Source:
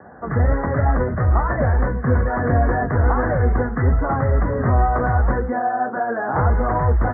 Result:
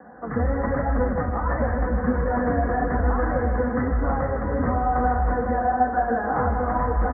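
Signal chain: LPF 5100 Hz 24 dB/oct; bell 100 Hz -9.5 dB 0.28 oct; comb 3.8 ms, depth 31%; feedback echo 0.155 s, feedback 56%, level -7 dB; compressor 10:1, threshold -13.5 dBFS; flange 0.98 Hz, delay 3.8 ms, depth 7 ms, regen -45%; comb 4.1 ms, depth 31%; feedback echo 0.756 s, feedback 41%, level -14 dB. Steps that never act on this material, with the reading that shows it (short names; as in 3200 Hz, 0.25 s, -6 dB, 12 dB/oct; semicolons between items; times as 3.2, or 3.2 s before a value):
LPF 5100 Hz: input band ends at 1800 Hz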